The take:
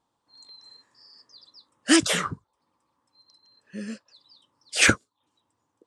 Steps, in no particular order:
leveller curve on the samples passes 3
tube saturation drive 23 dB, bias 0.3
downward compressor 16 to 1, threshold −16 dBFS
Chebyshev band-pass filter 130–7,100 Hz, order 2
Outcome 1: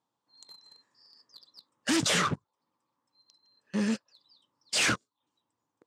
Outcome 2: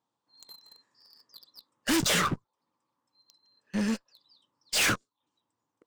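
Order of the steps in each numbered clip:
downward compressor, then leveller curve on the samples, then tube saturation, then Chebyshev band-pass filter
downward compressor, then Chebyshev band-pass filter, then leveller curve on the samples, then tube saturation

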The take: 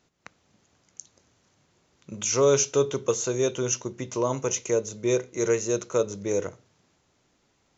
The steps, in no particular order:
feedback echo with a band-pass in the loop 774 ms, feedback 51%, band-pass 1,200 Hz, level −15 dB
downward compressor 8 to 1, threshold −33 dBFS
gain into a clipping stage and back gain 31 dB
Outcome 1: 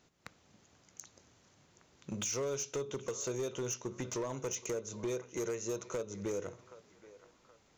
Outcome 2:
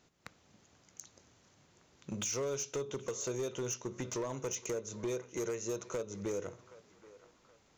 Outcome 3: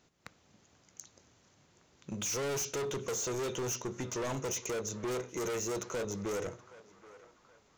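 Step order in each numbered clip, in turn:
downward compressor, then feedback echo with a band-pass in the loop, then gain into a clipping stage and back
downward compressor, then gain into a clipping stage and back, then feedback echo with a band-pass in the loop
gain into a clipping stage and back, then downward compressor, then feedback echo with a band-pass in the loop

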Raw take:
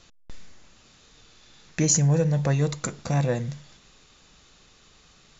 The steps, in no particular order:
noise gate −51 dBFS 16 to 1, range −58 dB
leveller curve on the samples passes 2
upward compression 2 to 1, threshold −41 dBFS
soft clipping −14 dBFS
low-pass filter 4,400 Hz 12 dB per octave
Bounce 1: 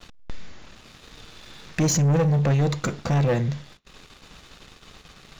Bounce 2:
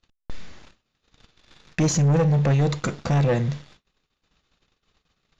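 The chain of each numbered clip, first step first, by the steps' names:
soft clipping, then low-pass filter, then upward compression, then noise gate, then leveller curve on the samples
noise gate, then upward compression, then leveller curve on the samples, then soft clipping, then low-pass filter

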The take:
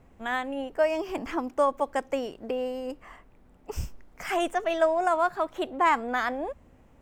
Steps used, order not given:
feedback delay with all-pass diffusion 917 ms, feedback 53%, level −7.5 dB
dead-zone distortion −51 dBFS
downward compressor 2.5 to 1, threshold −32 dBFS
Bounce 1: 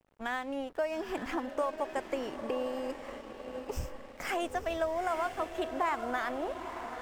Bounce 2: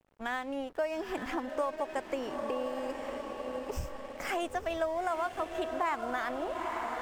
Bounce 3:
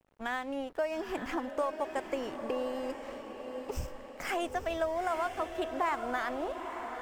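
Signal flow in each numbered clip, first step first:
downward compressor, then feedback delay with all-pass diffusion, then dead-zone distortion
feedback delay with all-pass diffusion, then downward compressor, then dead-zone distortion
downward compressor, then dead-zone distortion, then feedback delay with all-pass diffusion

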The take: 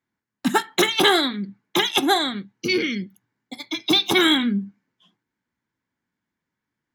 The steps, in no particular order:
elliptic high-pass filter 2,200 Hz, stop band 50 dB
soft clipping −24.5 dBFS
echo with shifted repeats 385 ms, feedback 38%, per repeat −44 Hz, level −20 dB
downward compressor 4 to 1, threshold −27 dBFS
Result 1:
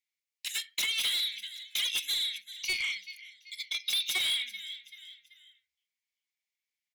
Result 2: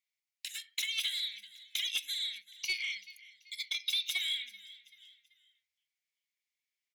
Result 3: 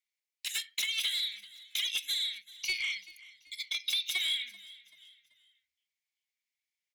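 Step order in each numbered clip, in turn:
elliptic high-pass filter, then echo with shifted repeats, then soft clipping, then downward compressor
downward compressor, then elliptic high-pass filter, then echo with shifted repeats, then soft clipping
elliptic high-pass filter, then downward compressor, then soft clipping, then echo with shifted repeats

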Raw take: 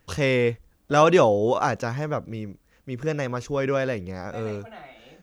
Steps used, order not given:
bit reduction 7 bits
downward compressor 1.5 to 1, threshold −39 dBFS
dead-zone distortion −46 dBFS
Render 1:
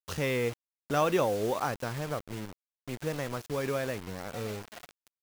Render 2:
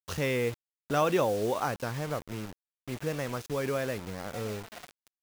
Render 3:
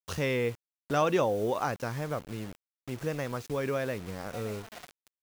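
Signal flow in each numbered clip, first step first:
downward compressor, then dead-zone distortion, then bit reduction
dead-zone distortion, then downward compressor, then bit reduction
dead-zone distortion, then bit reduction, then downward compressor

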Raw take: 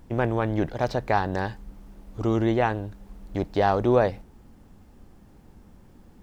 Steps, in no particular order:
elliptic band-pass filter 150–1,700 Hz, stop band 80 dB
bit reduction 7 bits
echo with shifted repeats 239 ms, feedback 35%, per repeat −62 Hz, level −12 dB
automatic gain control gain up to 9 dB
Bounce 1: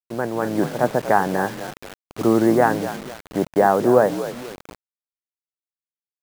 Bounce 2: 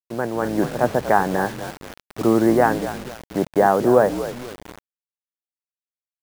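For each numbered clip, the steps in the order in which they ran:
echo with shifted repeats, then elliptic band-pass filter, then bit reduction, then automatic gain control
elliptic band-pass filter, then echo with shifted repeats, then bit reduction, then automatic gain control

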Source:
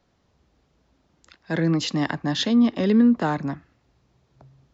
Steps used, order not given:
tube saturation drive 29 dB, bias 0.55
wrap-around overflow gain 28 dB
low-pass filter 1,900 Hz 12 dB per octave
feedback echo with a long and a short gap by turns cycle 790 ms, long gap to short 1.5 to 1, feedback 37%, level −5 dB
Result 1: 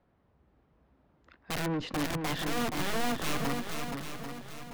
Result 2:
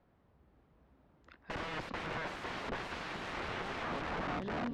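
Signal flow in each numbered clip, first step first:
low-pass filter, then tube saturation, then wrap-around overflow, then feedback echo with a long and a short gap by turns
feedback echo with a long and a short gap by turns, then wrap-around overflow, then low-pass filter, then tube saturation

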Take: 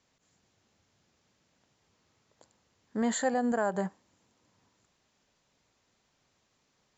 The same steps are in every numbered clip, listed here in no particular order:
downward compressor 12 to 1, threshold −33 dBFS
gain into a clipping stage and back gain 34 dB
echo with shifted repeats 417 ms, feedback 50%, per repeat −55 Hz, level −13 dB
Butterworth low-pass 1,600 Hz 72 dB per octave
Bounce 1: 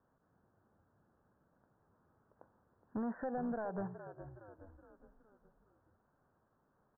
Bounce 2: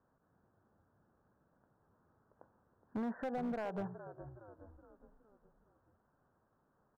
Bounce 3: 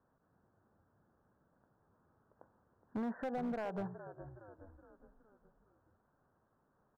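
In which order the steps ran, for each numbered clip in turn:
downward compressor, then echo with shifted repeats, then gain into a clipping stage and back, then Butterworth low-pass
downward compressor, then Butterworth low-pass, then echo with shifted repeats, then gain into a clipping stage and back
downward compressor, then echo with shifted repeats, then Butterworth low-pass, then gain into a clipping stage and back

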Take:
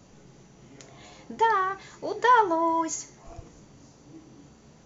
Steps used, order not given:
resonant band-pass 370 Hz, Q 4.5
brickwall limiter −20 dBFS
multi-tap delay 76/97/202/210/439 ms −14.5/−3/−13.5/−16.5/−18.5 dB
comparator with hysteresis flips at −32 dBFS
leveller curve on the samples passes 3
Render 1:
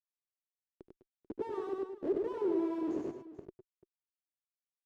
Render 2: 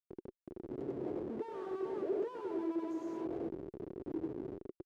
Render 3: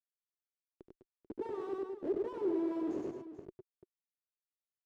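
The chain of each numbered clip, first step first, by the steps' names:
comparator with hysteresis, then leveller curve on the samples, then multi-tap delay, then brickwall limiter, then resonant band-pass
multi-tap delay, then brickwall limiter, then leveller curve on the samples, then comparator with hysteresis, then resonant band-pass
brickwall limiter, then comparator with hysteresis, then multi-tap delay, then leveller curve on the samples, then resonant band-pass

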